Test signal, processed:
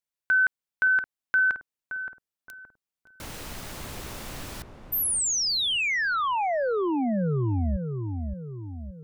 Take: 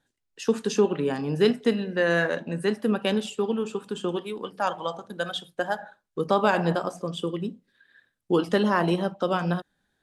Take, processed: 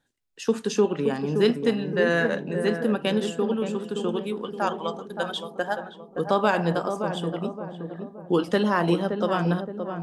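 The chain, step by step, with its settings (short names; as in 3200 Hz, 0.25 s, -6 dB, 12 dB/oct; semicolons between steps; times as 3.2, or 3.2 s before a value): darkening echo 0.571 s, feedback 51%, low-pass 860 Hz, level -5.5 dB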